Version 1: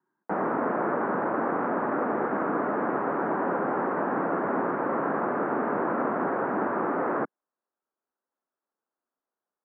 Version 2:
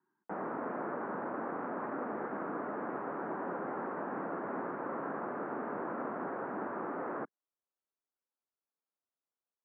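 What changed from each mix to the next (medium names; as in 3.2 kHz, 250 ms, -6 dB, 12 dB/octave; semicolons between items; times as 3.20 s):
background -11.0 dB; reverb: off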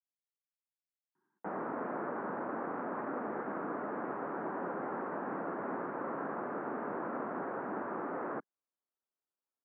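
speech: entry +1.15 s; background: entry +1.15 s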